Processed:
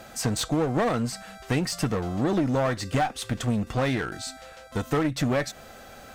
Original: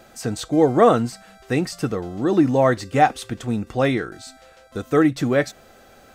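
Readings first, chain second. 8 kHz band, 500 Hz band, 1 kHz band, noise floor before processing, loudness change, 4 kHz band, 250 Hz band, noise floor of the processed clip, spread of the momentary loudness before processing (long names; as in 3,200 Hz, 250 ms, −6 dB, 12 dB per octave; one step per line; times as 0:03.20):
+2.5 dB, −8.5 dB, −8.5 dB, −50 dBFS, −6.5 dB, +1.0 dB, −6.0 dB, −47 dBFS, 14 LU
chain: parametric band 370 Hz −5.5 dB 0.71 octaves
downward compressor 5 to 1, threshold −24 dBFS, peak gain reduction 12.5 dB
asymmetric clip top −30 dBFS
level +4.5 dB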